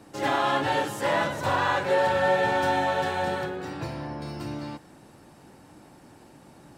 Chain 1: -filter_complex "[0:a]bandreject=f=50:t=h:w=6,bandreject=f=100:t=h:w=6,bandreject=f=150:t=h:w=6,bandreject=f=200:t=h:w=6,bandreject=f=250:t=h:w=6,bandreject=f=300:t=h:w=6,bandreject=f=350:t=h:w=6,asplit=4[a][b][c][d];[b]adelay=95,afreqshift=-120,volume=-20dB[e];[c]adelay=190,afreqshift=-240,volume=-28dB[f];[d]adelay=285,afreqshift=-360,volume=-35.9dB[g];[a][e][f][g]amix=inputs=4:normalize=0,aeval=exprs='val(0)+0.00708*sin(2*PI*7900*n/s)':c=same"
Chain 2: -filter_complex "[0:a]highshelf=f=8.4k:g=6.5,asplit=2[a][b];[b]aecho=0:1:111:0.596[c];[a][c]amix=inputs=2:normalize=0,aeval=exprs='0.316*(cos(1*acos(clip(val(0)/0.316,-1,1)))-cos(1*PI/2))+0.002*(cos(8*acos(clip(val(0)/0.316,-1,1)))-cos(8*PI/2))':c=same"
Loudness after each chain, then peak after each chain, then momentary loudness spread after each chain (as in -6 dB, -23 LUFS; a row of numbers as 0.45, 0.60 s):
-26.0, -24.5 LUFS; -12.5, -10.0 dBFS; 20, 13 LU